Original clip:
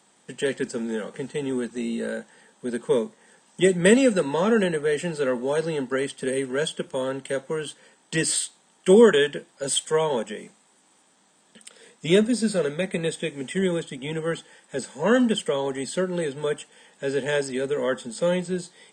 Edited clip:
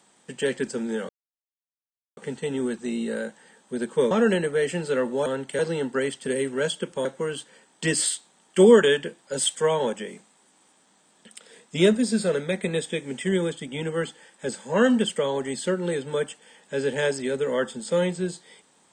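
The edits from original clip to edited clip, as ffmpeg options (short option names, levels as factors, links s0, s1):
-filter_complex "[0:a]asplit=6[s0][s1][s2][s3][s4][s5];[s0]atrim=end=1.09,asetpts=PTS-STARTPTS,afade=t=out:st=1.086:d=0.004:c=hsin,apad=pad_dur=1.08[s6];[s1]atrim=start=1.09:end=3.032,asetpts=PTS-STARTPTS,afade=t=in:d=0.004:c=hsin[s7];[s2]atrim=start=4.408:end=5.562[s8];[s3]atrim=start=7.018:end=7.352[s9];[s4]atrim=start=5.558:end=7.022[s10];[s5]atrim=start=7.348[s11];[s6][s7]concat=n=2:v=0:a=1[s12];[s12][s8]acrossfade=d=0.004:c1=hsin:c2=hsin[s13];[s13][s9]acrossfade=d=0.004:c1=hsin:c2=hsin[s14];[s14][s10]acrossfade=d=0.004:c1=hsin:c2=hsin[s15];[s15][s11]acrossfade=d=0.004:c1=hsin:c2=hsin"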